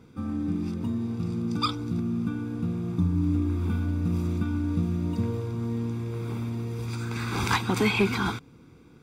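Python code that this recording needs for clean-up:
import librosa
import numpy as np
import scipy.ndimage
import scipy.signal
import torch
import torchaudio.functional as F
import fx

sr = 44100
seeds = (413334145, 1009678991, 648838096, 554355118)

y = fx.fix_declip(x, sr, threshold_db=-14.5)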